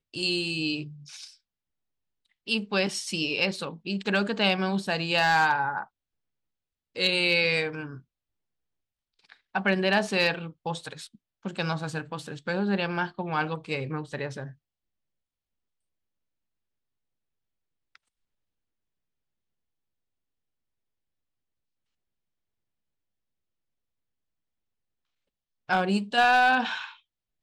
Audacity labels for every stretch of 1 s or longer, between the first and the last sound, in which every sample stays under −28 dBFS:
0.820000	2.480000	silence
5.830000	6.970000	silence
7.820000	9.550000	silence
14.400000	25.690000	silence